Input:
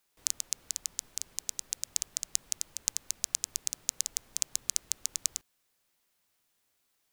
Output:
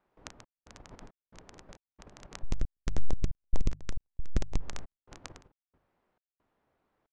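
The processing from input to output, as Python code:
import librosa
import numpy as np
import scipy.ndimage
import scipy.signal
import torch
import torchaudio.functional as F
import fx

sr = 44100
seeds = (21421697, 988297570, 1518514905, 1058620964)

y = fx.delta_hold(x, sr, step_db=-25.5, at=(2.42, 4.59), fade=0.02)
y = fx.hum_notches(y, sr, base_hz=50, count=3)
y = y + 10.0 ** (-11.5 / 20.0) * np.pad(y, (int(366 * sr / 1000.0), 0))[:len(y)]
y = fx.step_gate(y, sr, bpm=68, pattern='xx.xx.xx.x', floor_db=-60.0, edge_ms=4.5)
y = fx.level_steps(y, sr, step_db=10)
y = scipy.signal.sosfilt(scipy.signal.butter(2, 1000.0, 'lowpass', fs=sr, output='sos'), y)
y = y * 10.0 ** (15.5 / 20.0)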